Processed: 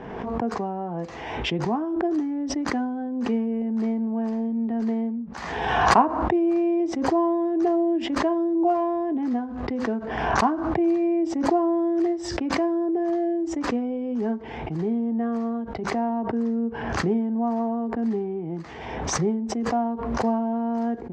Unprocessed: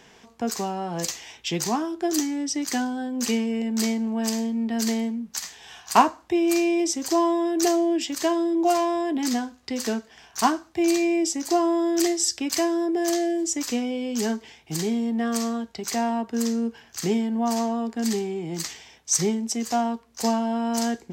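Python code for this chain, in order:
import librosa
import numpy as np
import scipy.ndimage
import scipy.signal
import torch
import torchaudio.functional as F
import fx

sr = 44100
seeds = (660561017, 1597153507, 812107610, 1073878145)

y = scipy.signal.sosfilt(scipy.signal.butter(2, 1000.0, 'lowpass', fs=sr, output='sos'), x)
y = fx.pre_swell(y, sr, db_per_s=36.0)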